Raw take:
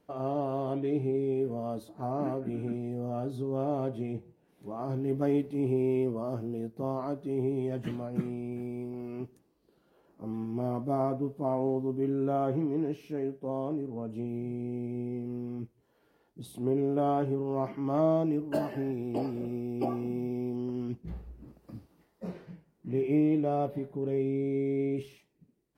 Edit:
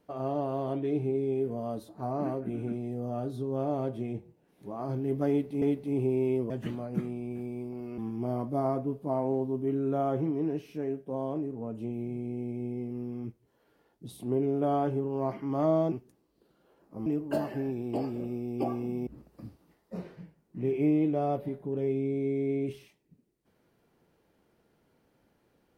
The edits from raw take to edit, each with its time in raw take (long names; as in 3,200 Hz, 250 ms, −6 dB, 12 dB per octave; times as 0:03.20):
0:05.29–0:05.62: repeat, 2 plays
0:06.17–0:07.71: remove
0:09.19–0:10.33: move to 0:18.27
0:20.28–0:21.37: remove